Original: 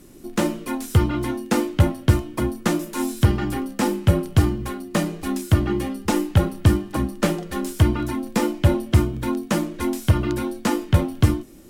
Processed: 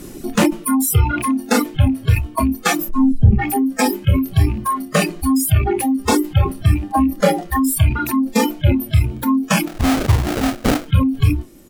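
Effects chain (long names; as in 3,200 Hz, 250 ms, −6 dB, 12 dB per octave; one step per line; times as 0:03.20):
loose part that buzzes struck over −22 dBFS, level −20 dBFS
ambience of single reflections 27 ms −8 dB, 38 ms −13 dB, 56 ms −13 dB
reverb reduction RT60 1.7 s
0:02.89–0:03.39: spectral tilt −3.5 dB per octave
in parallel at +0.5 dB: speech leveller within 5 dB 2 s
on the sum: noise reduction from a noise print of the clip's start 21 dB
0:06.82–0:07.42: hollow resonant body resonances 300/550/800/1,900 Hz, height 13 dB, ringing for 90 ms
0:09.67–0:10.87: sample-rate reduction 1,000 Hz, jitter 20%
envelope flattener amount 70%
level −15 dB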